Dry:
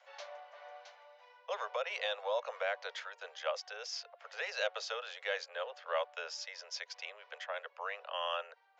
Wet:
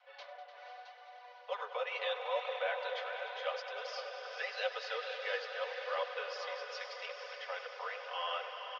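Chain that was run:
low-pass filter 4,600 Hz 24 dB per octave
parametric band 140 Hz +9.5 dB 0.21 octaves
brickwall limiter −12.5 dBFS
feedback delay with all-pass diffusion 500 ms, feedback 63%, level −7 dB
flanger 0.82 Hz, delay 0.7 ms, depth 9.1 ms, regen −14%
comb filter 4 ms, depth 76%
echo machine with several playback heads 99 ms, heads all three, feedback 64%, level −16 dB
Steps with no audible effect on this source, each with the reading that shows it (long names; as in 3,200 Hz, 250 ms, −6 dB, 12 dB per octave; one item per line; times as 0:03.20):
parametric band 140 Hz: nothing at its input below 380 Hz
brickwall limiter −12.5 dBFS: peak of its input −20.0 dBFS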